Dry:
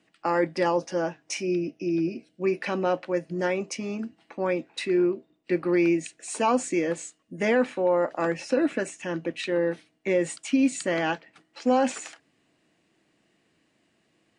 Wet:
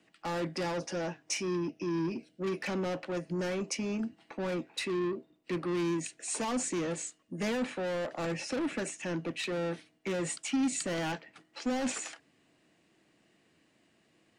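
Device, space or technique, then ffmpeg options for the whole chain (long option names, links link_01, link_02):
one-band saturation: -filter_complex "[0:a]acrossover=split=200|4500[link_01][link_02][link_03];[link_02]asoftclip=type=tanh:threshold=-33dB[link_04];[link_01][link_04][link_03]amix=inputs=3:normalize=0"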